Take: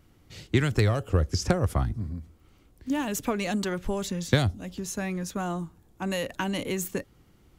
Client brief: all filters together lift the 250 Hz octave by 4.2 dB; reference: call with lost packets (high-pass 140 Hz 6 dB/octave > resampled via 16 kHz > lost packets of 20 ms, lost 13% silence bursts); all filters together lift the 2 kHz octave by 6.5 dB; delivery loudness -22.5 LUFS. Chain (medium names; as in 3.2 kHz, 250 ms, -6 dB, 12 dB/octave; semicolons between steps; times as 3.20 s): high-pass 140 Hz 6 dB/octave; peaking EQ 250 Hz +7.5 dB; peaking EQ 2 kHz +8 dB; resampled via 16 kHz; lost packets of 20 ms, lost 13% silence bursts; trim +5 dB